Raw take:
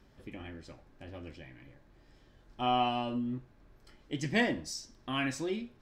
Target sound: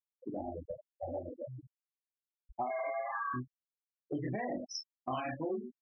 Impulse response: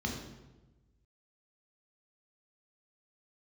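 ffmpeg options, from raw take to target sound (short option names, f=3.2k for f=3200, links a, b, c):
-filter_complex "[0:a]asettb=1/sr,asplit=3[a][b][c];[a]atrim=end=2.664[d];[b]atrim=start=2.66:end=3.34,asetpts=PTS-STARTPTS,afade=t=in:d=0.004:c=qsin,afade=t=out:st=0.676:d=0.004:c=qsin,aeval=exprs='val(0)*sin(2*PI*1400*n/s)':c=same[e];[c]atrim=start=3.336[f];[d][e]acrossfade=d=0.004:c1=hsin:c2=qsin[g];[g][f]acrossfade=d=0.004:c1=qsin:c2=hsin,flanger=delay=19.5:depth=4.7:speed=2.2,asplit=2[h][i];[i]aecho=0:1:24|40:0.562|0.501[j];[h][j]amix=inputs=2:normalize=0,acompressor=mode=upward:threshold=-54dB:ratio=2.5,equalizer=f=720:w=1:g=13.5,asplit=2[k][l];[l]aeval=exprs='0.0398*(abs(mod(val(0)/0.0398+3,4)-2)-1)':c=same,volume=-9dB[m];[k][m]amix=inputs=2:normalize=0,alimiter=limit=-21dB:level=0:latency=1:release=182,afftfilt=real='re*gte(hypot(re,im),0.0398)':imag='im*gte(hypot(re,im),0.0398)':win_size=1024:overlap=0.75,acompressor=threshold=-43dB:ratio=3,volume=5dB"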